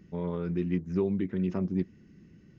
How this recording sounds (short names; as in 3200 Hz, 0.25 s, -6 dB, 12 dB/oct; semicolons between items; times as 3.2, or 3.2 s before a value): noise floor -56 dBFS; spectral tilt -8.0 dB/oct